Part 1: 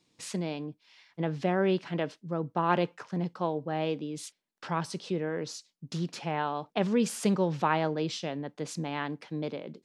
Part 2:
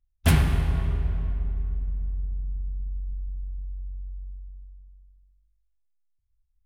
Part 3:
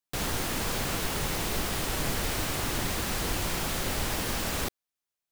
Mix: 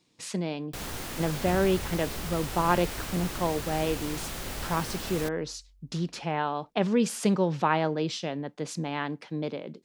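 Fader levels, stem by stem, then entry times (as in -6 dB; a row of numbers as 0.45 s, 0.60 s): +2.0 dB, -17.5 dB, -6.0 dB; 0.00 s, 1.20 s, 0.60 s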